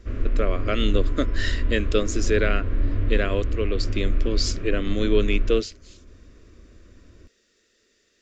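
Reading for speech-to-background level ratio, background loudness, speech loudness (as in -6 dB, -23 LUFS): 2.5 dB, -29.0 LUFS, -26.5 LUFS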